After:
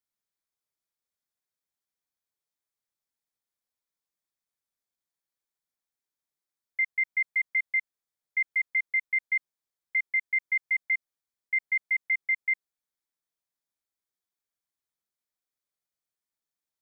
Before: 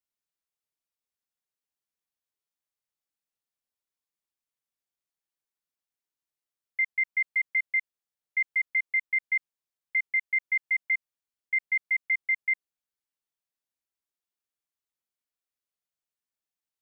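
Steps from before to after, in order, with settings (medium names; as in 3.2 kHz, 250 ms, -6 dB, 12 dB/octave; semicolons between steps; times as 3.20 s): band-stop 2.8 kHz, Q 6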